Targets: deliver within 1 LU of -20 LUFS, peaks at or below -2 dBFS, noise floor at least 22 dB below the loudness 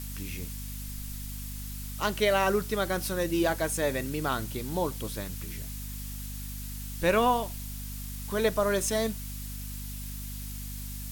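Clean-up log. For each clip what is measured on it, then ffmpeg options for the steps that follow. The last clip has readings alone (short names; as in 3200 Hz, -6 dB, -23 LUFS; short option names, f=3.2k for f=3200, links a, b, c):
hum 50 Hz; harmonics up to 250 Hz; hum level -36 dBFS; noise floor -38 dBFS; noise floor target -53 dBFS; loudness -31.0 LUFS; peak -13.0 dBFS; loudness target -20.0 LUFS
-> -af "bandreject=f=50:t=h:w=6,bandreject=f=100:t=h:w=6,bandreject=f=150:t=h:w=6,bandreject=f=200:t=h:w=6,bandreject=f=250:t=h:w=6"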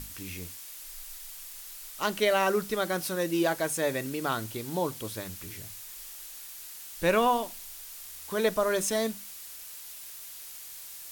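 hum none; noise floor -44 dBFS; noise floor target -54 dBFS
-> -af "afftdn=nr=10:nf=-44"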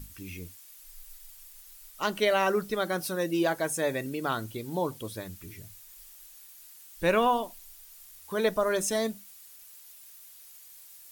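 noise floor -51 dBFS; loudness -29.0 LUFS; peak -13.5 dBFS; loudness target -20.0 LUFS
-> -af "volume=9dB"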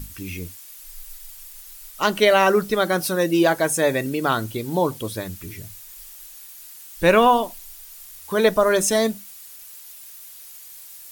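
loudness -20.0 LUFS; peak -4.5 dBFS; noise floor -42 dBFS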